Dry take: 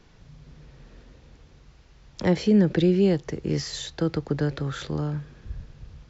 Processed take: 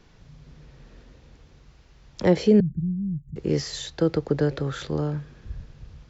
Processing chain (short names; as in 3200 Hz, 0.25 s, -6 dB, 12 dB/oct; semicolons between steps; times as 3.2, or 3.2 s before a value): 2.6–3.36 inverse Chebyshev band-stop 420–5900 Hz, stop band 50 dB; dynamic EQ 480 Hz, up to +6 dB, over -38 dBFS, Q 1.3